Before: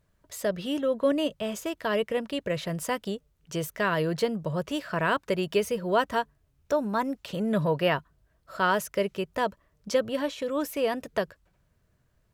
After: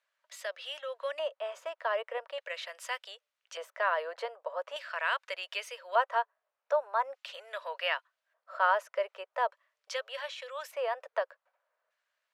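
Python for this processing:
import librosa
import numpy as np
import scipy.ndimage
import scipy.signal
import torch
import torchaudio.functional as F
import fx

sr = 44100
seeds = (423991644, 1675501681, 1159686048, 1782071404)

y = fx.filter_lfo_bandpass(x, sr, shape='square', hz=0.42, low_hz=950.0, high_hz=2500.0, q=0.79)
y = scipy.signal.sosfilt(scipy.signal.ellip(4, 1.0, 60, 530.0, 'highpass', fs=sr, output='sos'), y)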